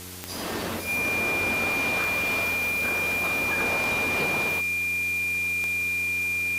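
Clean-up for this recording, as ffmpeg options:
ffmpeg -i in.wav -af "adeclick=threshold=4,bandreject=frequency=90.7:width_type=h:width=4,bandreject=frequency=181.4:width_type=h:width=4,bandreject=frequency=272.1:width_type=h:width=4,bandreject=frequency=362.8:width_type=h:width=4,bandreject=frequency=453.5:width_type=h:width=4,bandreject=frequency=2400:width=30,afwtdn=0.01" out.wav

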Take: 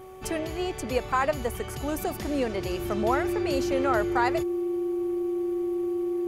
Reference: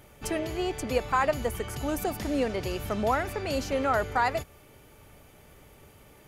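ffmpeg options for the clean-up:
ffmpeg -i in.wav -af "bandreject=frequency=375.5:width_type=h:width=4,bandreject=frequency=751:width_type=h:width=4,bandreject=frequency=1126.5:width_type=h:width=4,bandreject=frequency=350:width=30" out.wav

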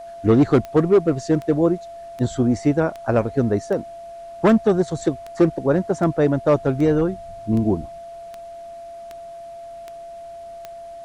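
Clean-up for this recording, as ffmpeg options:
ffmpeg -i in.wav -af "adeclick=threshold=4,bandreject=frequency=680:width=30,agate=range=-21dB:threshold=-29dB" out.wav

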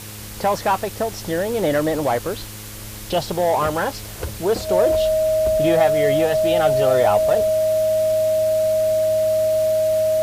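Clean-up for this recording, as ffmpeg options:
ffmpeg -i in.wav -af "bandreject=frequency=105.7:width_type=h:width=4,bandreject=frequency=211.4:width_type=h:width=4,bandreject=frequency=317.1:width_type=h:width=4,bandreject=frequency=422.8:width_type=h:width=4,bandreject=frequency=528.5:width_type=h:width=4,bandreject=frequency=630:width=30,afwtdn=0.016" out.wav

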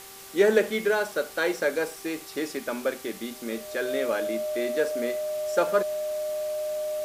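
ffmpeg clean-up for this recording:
ffmpeg -i in.wav -af "bandreject=frequency=389.1:width_type=h:width=4,bandreject=frequency=778.2:width_type=h:width=4,bandreject=frequency=1167.3:width_type=h:width=4,bandreject=frequency=610:width=30,afftdn=noise_reduction=29:noise_floor=-43" out.wav

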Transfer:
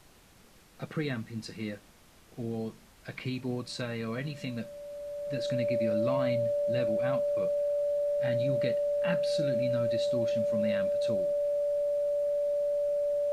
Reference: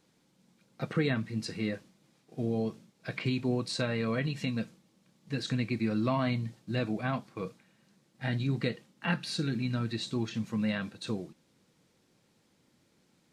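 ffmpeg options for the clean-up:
ffmpeg -i in.wav -af "bandreject=frequency=580:width=30,agate=range=-21dB:threshold=-49dB,asetnsamples=nb_out_samples=441:pad=0,asendcmd='0.63 volume volume 4dB',volume=0dB" out.wav

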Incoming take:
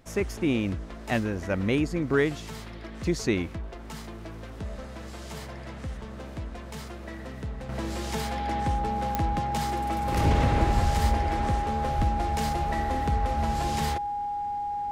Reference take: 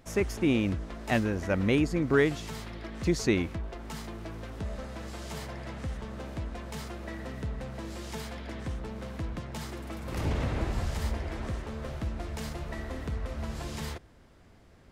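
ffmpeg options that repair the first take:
ffmpeg -i in.wav -filter_complex "[0:a]adeclick=threshold=4,bandreject=frequency=820:width=30,asplit=3[link_01][link_02][link_03];[link_01]afade=type=out:start_time=11.97:duration=0.02[link_04];[link_02]highpass=frequency=140:width=0.5412,highpass=frequency=140:width=1.3066,afade=type=in:start_time=11.97:duration=0.02,afade=type=out:start_time=12.09:duration=0.02[link_05];[link_03]afade=type=in:start_time=12.09:duration=0.02[link_06];[link_04][link_05][link_06]amix=inputs=3:normalize=0,asetnsamples=nb_out_samples=441:pad=0,asendcmd='7.69 volume volume -7dB',volume=0dB" out.wav

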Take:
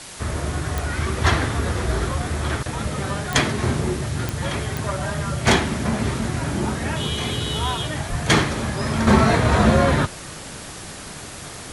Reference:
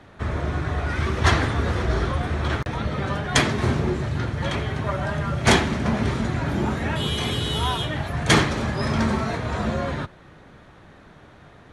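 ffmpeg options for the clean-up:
ffmpeg -i in.wav -filter_complex "[0:a]adeclick=threshold=4,asplit=3[link_01][link_02][link_03];[link_01]afade=type=out:start_time=8.09:duration=0.02[link_04];[link_02]highpass=frequency=140:width=0.5412,highpass=frequency=140:width=1.3066,afade=type=in:start_time=8.09:duration=0.02,afade=type=out:start_time=8.21:duration=0.02[link_05];[link_03]afade=type=in:start_time=8.21:duration=0.02[link_06];[link_04][link_05][link_06]amix=inputs=3:normalize=0,afwtdn=0.016,asetnsamples=nb_out_samples=441:pad=0,asendcmd='9.07 volume volume -9.5dB',volume=0dB" out.wav

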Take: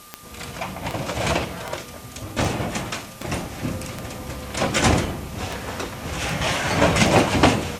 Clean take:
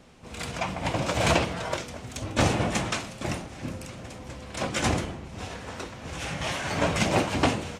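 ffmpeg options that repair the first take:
ffmpeg -i in.wav -af "adeclick=threshold=4,bandreject=frequency=1200:width=30,afwtdn=0.0056,asetnsamples=nb_out_samples=441:pad=0,asendcmd='3.32 volume volume -7.5dB',volume=0dB" out.wav

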